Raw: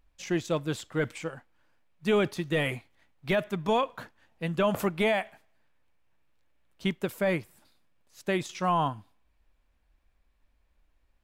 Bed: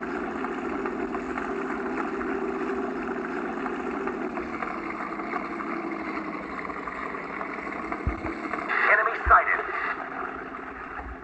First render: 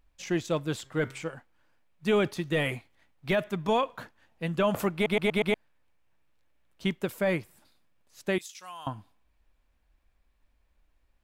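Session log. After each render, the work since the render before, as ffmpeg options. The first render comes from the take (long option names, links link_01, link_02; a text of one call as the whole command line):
ffmpeg -i in.wav -filter_complex "[0:a]asplit=3[link_01][link_02][link_03];[link_01]afade=type=out:start_time=0.84:duration=0.02[link_04];[link_02]bandreject=frequency=133.9:width_type=h:width=4,bandreject=frequency=267.8:width_type=h:width=4,bandreject=frequency=401.7:width_type=h:width=4,bandreject=frequency=535.6:width_type=h:width=4,bandreject=frequency=669.5:width_type=h:width=4,bandreject=frequency=803.4:width_type=h:width=4,bandreject=frequency=937.3:width_type=h:width=4,bandreject=frequency=1071.2:width_type=h:width=4,bandreject=frequency=1205.1:width_type=h:width=4,bandreject=frequency=1339:width_type=h:width=4,bandreject=frequency=1472.9:width_type=h:width=4,bandreject=frequency=1606.8:width_type=h:width=4,bandreject=frequency=1740.7:width_type=h:width=4,bandreject=frequency=1874.6:width_type=h:width=4,bandreject=frequency=2008.5:width_type=h:width=4,bandreject=frequency=2142.4:width_type=h:width=4,bandreject=frequency=2276.3:width_type=h:width=4,afade=type=in:start_time=0.84:duration=0.02,afade=type=out:start_time=1.33:duration=0.02[link_05];[link_03]afade=type=in:start_time=1.33:duration=0.02[link_06];[link_04][link_05][link_06]amix=inputs=3:normalize=0,asettb=1/sr,asplit=3[link_07][link_08][link_09];[link_07]atrim=end=8.384[link_10];[link_08]atrim=start=8.38:end=8.87,asetpts=PTS-STARTPTS,afade=type=in:duration=0.004:curve=qsin,afade=type=out:start_time=0.486:duration=0.004:curve=qsin,aderivative[link_11];[link_09]atrim=start=8.866[link_12];[link_10][link_11]acrossfade=duration=0.004:curve1=hsin:curve2=qsin[link_13];[link_13][link_12]acrossfade=duration=0.004:curve1=qsin:curve2=hsin,asplit=6[link_14][link_15][link_16][link_17][link_18][link_19];[link_14]atrim=end=5.062[link_20];[link_15]atrim=start=4.938:end=5.062[link_21];[link_16]atrim=start=4.938:end=5.062[link_22];[link_17]atrim=start=4.938:end=5.062[link_23];[link_18]atrim=start=4.938:end=5.062[link_24];[link_19]atrim=start=5.538[link_25];[link_20][link_21]acrossfade=duration=0.004:curve1=hsin:curve2=hsin[link_26];[link_26][link_22]acrossfade=duration=0.004:curve1=hsin:curve2=hsin[link_27];[link_27][link_23]acrossfade=duration=0.004:curve1=hsin:curve2=hsin[link_28];[link_28][link_24]acrossfade=duration=0.004:curve1=hsin:curve2=hsin[link_29];[link_29][link_25]acrossfade=duration=0.004:curve1=hsin:curve2=hsin" out.wav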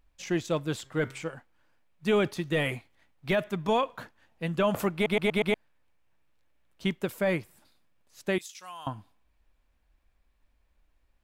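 ffmpeg -i in.wav -af anull out.wav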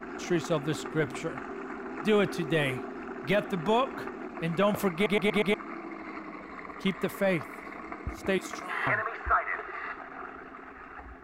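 ffmpeg -i in.wav -i bed.wav -filter_complex "[1:a]volume=-8.5dB[link_01];[0:a][link_01]amix=inputs=2:normalize=0" out.wav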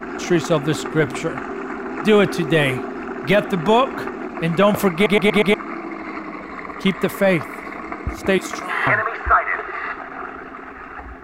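ffmpeg -i in.wav -af "volume=10.5dB" out.wav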